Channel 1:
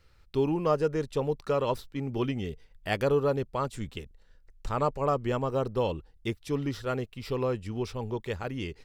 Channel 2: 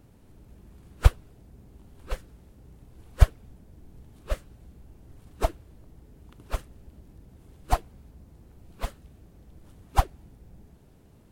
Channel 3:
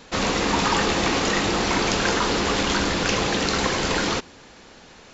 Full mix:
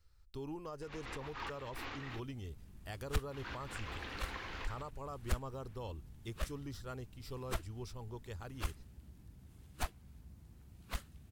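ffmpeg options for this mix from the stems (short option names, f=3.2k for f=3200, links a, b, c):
-filter_complex "[0:a]equalizer=f=2.4k:w=0.8:g=-11,volume=-4dB,asplit=2[a][b];[1:a]highpass=49,alimiter=limit=-12.5dB:level=0:latency=1:release=324,aeval=exprs='(tanh(22.4*val(0)+0.6)-tanh(0.6))/22.4':c=same,adelay=2100,volume=0dB[c];[2:a]lowpass=2.4k,adelay=700,volume=-15dB,asplit=3[d][e][f];[d]atrim=end=2.2,asetpts=PTS-STARTPTS,afade=t=out:st=2.196:d=0.004:c=hsin[g];[e]atrim=start=2.2:end=3.31,asetpts=PTS-STARTPTS,volume=0[h];[f]atrim=start=3.31,asetpts=PTS-STARTPTS,afade=t=in:d=0.004:c=hsin[i];[g][h][i]concat=n=3:v=0:a=1[j];[b]apad=whole_len=257404[k];[j][k]sidechaincompress=threshold=-38dB:ratio=8:attack=5.2:release=105[l];[a][l]amix=inputs=2:normalize=0,equalizer=f=180:w=1.8:g=-14,alimiter=level_in=3.5dB:limit=-24dB:level=0:latency=1:release=85,volume=-3.5dB,volume=0dB[m];[c][m]amix=inputs=2:normalize=0,equalizer=f=500:t=o:w=1.9:g=-11"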